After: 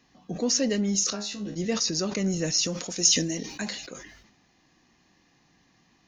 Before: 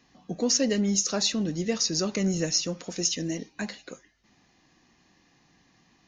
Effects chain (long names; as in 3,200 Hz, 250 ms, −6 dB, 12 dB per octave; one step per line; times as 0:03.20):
0:01.10–0:01.56: tuned comb filter 69 Hz, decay 0.29 s, harmonics all, mix 100%
0:02.58–0:03.87: high-shelf EQ 4,800 Hz +10 dB
level that may fall only so fast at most 59 dB per second
level −1 dB